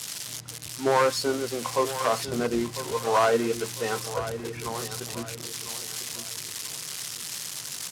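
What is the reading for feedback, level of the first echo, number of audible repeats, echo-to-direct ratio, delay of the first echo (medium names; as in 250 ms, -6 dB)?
32%, -12.0 dB, 3, -11.5 dB, 1000 ms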